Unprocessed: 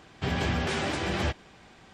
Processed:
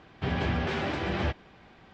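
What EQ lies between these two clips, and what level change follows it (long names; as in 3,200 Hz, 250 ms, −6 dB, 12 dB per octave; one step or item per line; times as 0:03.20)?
high-frequency loss of the air 180 metres
0.0 dB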